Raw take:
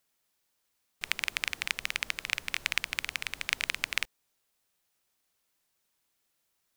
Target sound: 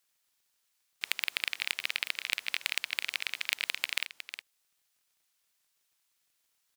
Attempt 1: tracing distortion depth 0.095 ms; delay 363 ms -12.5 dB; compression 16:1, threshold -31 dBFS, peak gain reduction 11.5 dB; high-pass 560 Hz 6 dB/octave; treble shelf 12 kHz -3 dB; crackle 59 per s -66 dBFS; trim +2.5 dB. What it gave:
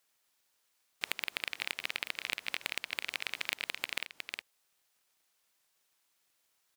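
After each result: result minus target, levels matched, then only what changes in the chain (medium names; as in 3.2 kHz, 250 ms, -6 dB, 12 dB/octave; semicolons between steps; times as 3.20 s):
500 Hz band +7.5 dB; compression: peak gain reduction +7 dB
change: high-pass 1.9 kHz 6 dB/octave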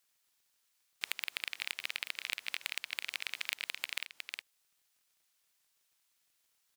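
compression: peak gain reduction +7 dB
change: compression 16:1, threshold -23.5 dBFS, peak gain reduction 4.5 dB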